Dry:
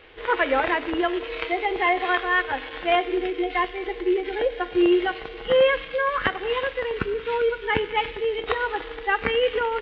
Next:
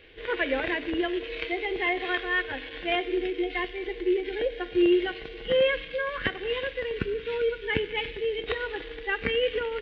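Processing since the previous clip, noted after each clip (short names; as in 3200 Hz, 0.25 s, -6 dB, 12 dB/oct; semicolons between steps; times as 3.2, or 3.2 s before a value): bell 910 Hz -13 dB 0.98 oct; notch 1300 Hz, Q 7.3; gain -1 dB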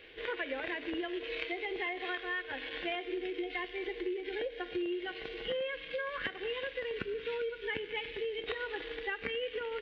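low shelf 180 Hz -10 dB; compressor 6:1, threshold -34 dBFS, peak gain reduction 13.5 dB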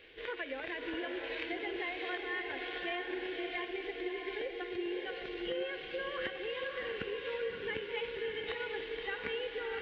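diffused feedback echo 0.63 s, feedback 43%, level -3 dB; gain -3 dB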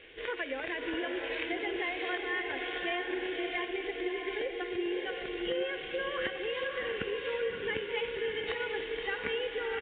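downsampling 8000 Hz; gain +4 dB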